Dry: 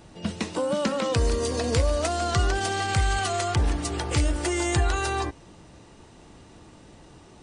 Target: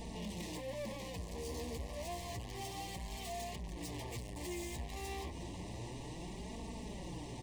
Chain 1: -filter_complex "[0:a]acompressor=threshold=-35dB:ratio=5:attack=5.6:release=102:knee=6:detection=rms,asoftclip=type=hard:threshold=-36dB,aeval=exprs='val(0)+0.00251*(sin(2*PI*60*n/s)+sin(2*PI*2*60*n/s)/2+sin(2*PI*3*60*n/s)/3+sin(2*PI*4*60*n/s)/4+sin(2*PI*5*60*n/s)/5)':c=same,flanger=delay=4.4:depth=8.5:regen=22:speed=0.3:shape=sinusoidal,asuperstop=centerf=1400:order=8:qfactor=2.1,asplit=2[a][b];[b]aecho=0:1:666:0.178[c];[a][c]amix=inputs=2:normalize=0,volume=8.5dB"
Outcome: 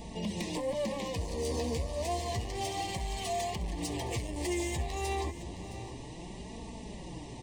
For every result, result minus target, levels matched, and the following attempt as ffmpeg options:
echo-to-direct +9 dB; hard clip: distortion -8 dB
-filter_complex "[0:a]acompressor=threshold=-35dB:ratio=5:attack=5.6:release=102:knee=6:detection=rms,asoftclip=type=hard:threshold=-36dB,aeval=exprs='val(0)+0.00251*(sin(2*PI*60*n/s)+sin(2*PI*2*60*n/s)/2+sin(2*PI*3*60*n/s)/3+sin(2*PI*4*60*n/s)/4+sin(2*PI*5*60*n/s)/5)':c=same,flanger=delay=4.4:depth=8.5:regen=22:speed=0.3:shape=sinusoidal,asuperstop=centerf=1400:order=8:qfactor=2.1,asplit=2[a][b];[b]aecho=0:1:666:0.0631[c];[a][c]amix=inputs=2:normalize=0,volume=8.5dB"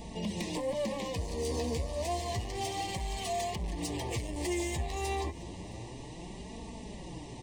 hard clip: distortion -8 dB
-filter_complex "[0:a]acompressor=threshold=-35dB:ratio=5:attack=5.6:release=102:knee=6:detection=rms,asoftclip=type=hard:threshold=-48dB,aeval=exprs='val(0)+0.00251*(sin(2*PI*60*n/s)+sin(2*PI*2*60*n/s)/2+sin(2*PI*3*60*n/s)/3+sin(2*PI*4*60*n/s)/4+sin(2*PI*5*60*n/s)/5)':c=same,flanger=delay=4.4:depth=8.5:regen=22:speed=0.3:shape=sinusoidal,asuperstop=centerf=1400:order=8:qfactor=2.1,asplit=2[a][b];[b]aecho=0:1:666:0.0631[c];[a][c]amix=inputs=2:normalize=0,volume=8.5dB"

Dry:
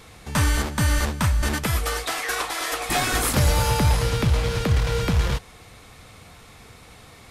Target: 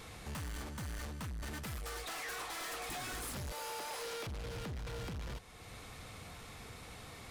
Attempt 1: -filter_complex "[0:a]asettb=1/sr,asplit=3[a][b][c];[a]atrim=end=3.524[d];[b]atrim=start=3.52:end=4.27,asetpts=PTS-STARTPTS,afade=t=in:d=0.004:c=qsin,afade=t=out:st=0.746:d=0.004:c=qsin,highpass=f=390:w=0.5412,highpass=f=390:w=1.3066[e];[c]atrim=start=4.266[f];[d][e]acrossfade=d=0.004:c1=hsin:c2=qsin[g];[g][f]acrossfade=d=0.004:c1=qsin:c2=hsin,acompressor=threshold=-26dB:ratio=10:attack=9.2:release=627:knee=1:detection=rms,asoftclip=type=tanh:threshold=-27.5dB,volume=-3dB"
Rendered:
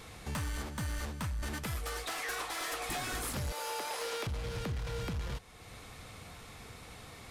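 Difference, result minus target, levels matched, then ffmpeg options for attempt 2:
soft clip: distortion -8 dB
-filter_complex "[0:a]asettb=1/sr,asplit=3[a][b][c];[a]atrim=end=3.524[d];[b]atrim=start=3.52:end=4.27,asetpts=PTS-STARTPTS,afade=t=in:d=0.004:c=qsin,afade=t=out:st=0.746:d=0.004:c=qsin,highpass=f=390:w=0.5412,highpass=f=390:w=1.3066[e];[c]atrim=start=4.266[f];[d][e]acrossfade=d=0.004:c1=hsin:c2=qsin[g];[g][f]acrossfade=d=0.004:c1=qsin:c2=hsin,acompressor=threshold=-26dB:ratio=10:attack=9.2:release=627:knee=1:detection=rms,asoftclip=type=tanh:threshold=-36.5dB,volume=-3dB"

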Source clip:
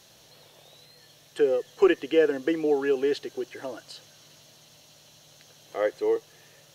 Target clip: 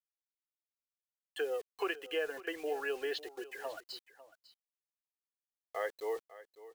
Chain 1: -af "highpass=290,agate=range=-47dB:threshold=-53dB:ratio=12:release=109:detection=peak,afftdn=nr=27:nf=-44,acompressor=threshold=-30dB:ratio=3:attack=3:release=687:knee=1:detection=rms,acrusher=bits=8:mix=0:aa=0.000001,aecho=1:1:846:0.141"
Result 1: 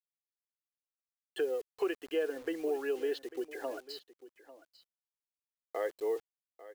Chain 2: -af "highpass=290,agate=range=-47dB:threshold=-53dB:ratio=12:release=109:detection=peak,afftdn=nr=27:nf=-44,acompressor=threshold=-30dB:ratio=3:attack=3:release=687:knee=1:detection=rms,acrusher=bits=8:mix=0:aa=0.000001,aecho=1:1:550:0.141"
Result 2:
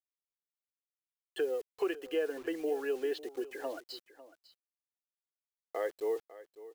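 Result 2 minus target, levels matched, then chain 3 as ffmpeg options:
250 Hz band +4.5 dB
-af "highpass=750,agate=range=-47dB:threshold=-53dB:ratio=12:release=109:detection=peak,afftdn=nr=27:nf=-44,acompressor=threshold=-30dB:ratio=3:attack=3:release=687:knee=1:detection=rms,acrusher=bits=8:mix=0:aa=0.000001,aecho=1:1:550:0.141"

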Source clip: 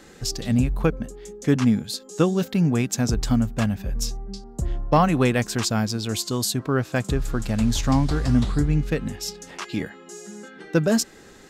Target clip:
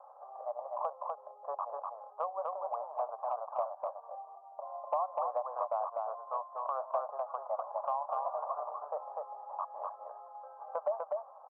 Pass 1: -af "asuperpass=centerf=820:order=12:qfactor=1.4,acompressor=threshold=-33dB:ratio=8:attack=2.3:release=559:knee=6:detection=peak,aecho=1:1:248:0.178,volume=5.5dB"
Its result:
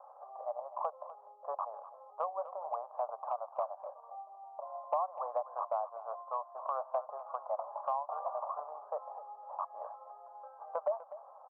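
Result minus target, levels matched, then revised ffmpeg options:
echo-to-direct -12 dB
-af "asuperpass=centerf=820:order=12:qfactor=1.4,acompressor=threshold=-33dB:ratio=8:attack=2.3:release=559:knee=6:detection=peak,aecho=1:1:248:0.708,volume=5.5dB"

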